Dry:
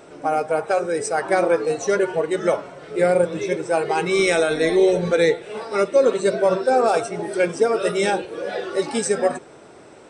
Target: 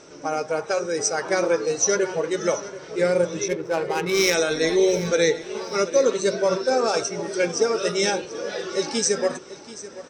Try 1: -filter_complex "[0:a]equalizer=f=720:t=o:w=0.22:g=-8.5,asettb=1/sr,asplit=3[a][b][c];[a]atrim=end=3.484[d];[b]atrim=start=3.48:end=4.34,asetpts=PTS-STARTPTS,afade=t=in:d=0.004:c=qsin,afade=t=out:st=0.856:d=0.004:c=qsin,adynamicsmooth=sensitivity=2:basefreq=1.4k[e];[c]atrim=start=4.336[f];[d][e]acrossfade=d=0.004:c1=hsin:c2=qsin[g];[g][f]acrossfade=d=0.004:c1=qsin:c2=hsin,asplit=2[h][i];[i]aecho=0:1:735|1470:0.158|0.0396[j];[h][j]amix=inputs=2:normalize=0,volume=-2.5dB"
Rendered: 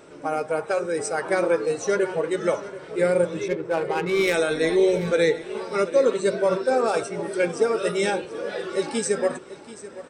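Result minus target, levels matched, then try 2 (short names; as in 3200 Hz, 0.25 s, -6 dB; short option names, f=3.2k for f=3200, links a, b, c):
8000 Hz band -9.0 dB
-filter_complex "[0:a]lowpass=f=5.9k:t=q:w=6.4,equalizer=f=720:t=o:w=0.22:g=-8.5,asettb=1/sr,asplit=3[a][b][c];[a]atrim=end=3.484[d];[b]atrim=start=3.48:end=4.34,asetpts=PTS-STARTPTS,afade=t=in:d=0.004:c=qsin,afade=t=out:st=0.856:d=0.004:c=qsin,adynamicsmooth=sensitivity=2:basefreq=1.4k[e];[c]atrim=start=4.336[f];[d][e]acrossfade=d=0.004:c1=hsin:c2=qsin[g];[g][f]acrossfade=d=0.004:c1=qsin:c2=hsin,asplit=2[h][i];[i]aecho=0:1:735|1470:0.158|0.0396[j];[h][j]amix=inputs=2:normalize=0,volume=-2.5dB"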